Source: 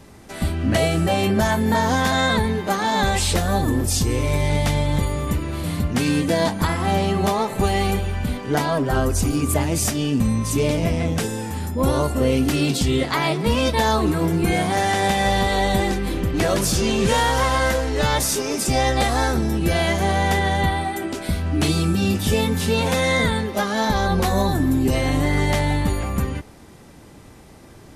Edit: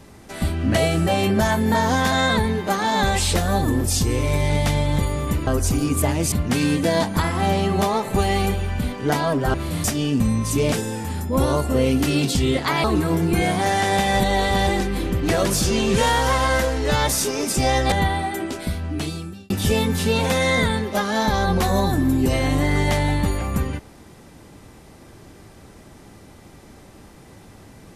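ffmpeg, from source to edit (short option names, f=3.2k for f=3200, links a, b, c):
-filter_complex "[0:a]asplit=11[a][b][c][d][e][f][g][h][i][j][k];[a]atrim=end=5.472[l];[b]atrim=start=8.988:end=9.842[m];[c]atrim=start=5.768:end=8.992[n];[d]atrim=start=5.468:end=5.772[o];[e]atrim=start=9.838:end=10.722[p];[f]atrim=start=11.178:end=13.302[q];[g]atrim=start=13.948:end=15.312[r];[h]atrim=start=15.308:end=15.782,asetpts=PTS-STARTPTS,areverse[s];[i]atrim=start=15.778:end=19.032[t];[j]atrim=start=20.538:end=22.12,asetpts=PTS-STARTPTS,afade=t=out:st=0.522:d=1.06[u];[k]atrim=start=22.12,asetpts=PTS-STARTPTS,afade=t=in:d=0.004:c=hsin[v];[l][m]acrossfade=d=0.004:c1=hsin:c2=hsin[w];[w][n]acrossfade=d=0.004:c1=hsin:c2=hsin[x];[x][o]acrossfade=d=0.004:c1=hsin:c2=hsin[y];[y][p]acrossfade=d=0.004:c1=hsin:c2=hsin[z];[z][q]acrossfade=d=0.004:c1=hsin:c2=hsin[aa];[aa][r]acrossfade=d=0.004:c1=hsin:c2=hsin[ab];[ab][s]acrossfade=d=0.004:c1=hsin:c2=hsin[ac];[ac][t]acrossfade=d=0.004:c1=hsin:c2=hsin[ad];[u][v]concat=n=2:v=0:a=1[ae];[ad][ae]acrossfade=d=0.004:c1=hsin:c2=hsin"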